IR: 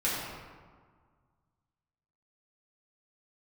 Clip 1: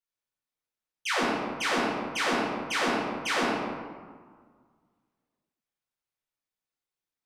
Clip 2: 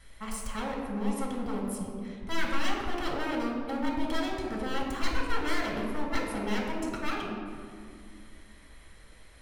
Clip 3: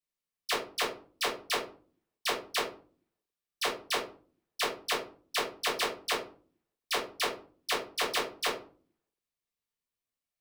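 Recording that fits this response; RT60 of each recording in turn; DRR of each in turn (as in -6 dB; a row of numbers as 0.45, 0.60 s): 1; 1.7, 2.2, 0.40 s; -8.5, -1.5, -5.0 dB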